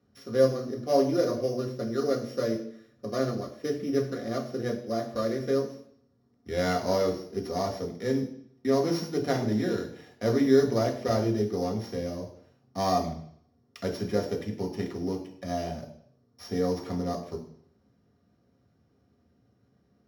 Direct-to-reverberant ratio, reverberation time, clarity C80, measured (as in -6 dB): 0.0 dB, 0.65 s, 12.5 dB